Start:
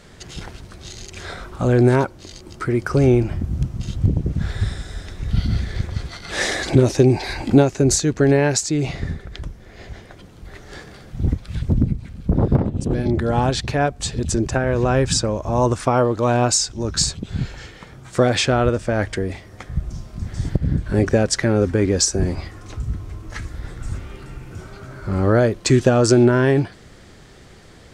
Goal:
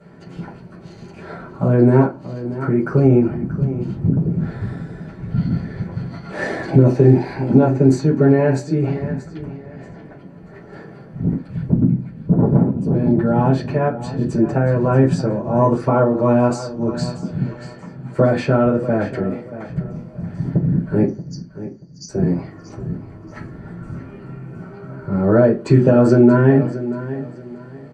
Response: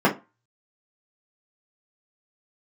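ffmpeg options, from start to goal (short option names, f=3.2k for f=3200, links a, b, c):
-filter_complex "[0:a]asettb=1/sr,asplit=3[a][b][c];[a]atrim=end=21.064[d];[b]atrim=start=21.06:end=22.09,asetpts=PTS-STARTPTS,afade=t=in:d=0.004:c=qsin,afade=t=out:st=1.026:d=0.004:c=qsin,asuperpass=centerf=5600:order=20:qfactor=2.3[e];[c]atrim=start=22.086[f];[d][e]acrossfade=d=0.004:c1=hsin:c2=qsin[g];[g][f]acrossfade=d=0.004:c1=qsin:c2=hsin,aecho=1:1:632|1264|1896:0.2|0.0559|0.0156[h];[1:a]atrim=start_sample=2205,asetrate=37926,aresample=44100[i];[h][i]afir=irnorm=-1:irlink=0,alimiter=level_in=-20dB:limit=-1dB:release=50:level=0:latency=1,volume=-1dB"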